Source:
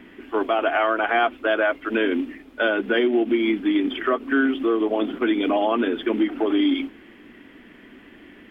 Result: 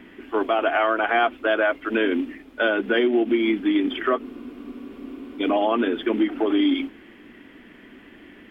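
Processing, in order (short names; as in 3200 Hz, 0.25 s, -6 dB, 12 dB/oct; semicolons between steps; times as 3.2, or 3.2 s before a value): spectral freeze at 4.26, 1.15 s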